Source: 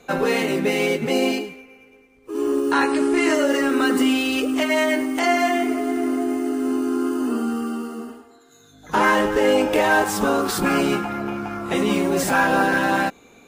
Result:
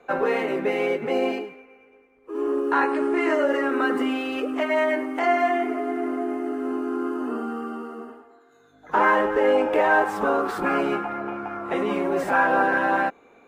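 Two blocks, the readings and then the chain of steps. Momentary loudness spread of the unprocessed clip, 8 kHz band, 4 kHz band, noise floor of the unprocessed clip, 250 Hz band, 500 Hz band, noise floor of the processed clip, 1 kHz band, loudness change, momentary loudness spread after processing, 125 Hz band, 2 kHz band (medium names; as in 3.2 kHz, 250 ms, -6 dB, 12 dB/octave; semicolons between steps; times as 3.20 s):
9 LU, under -15 dB, -11.0 dB, -52 dBFS, -6.0 dB, -1.5 dB, -56 dBFS, -0.5 dB, -3.0 dB, 11 LU, no reading, -2.5 dB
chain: three-band isolator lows -12 dB, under 330 Hz, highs -19 dB, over 2.2 kHz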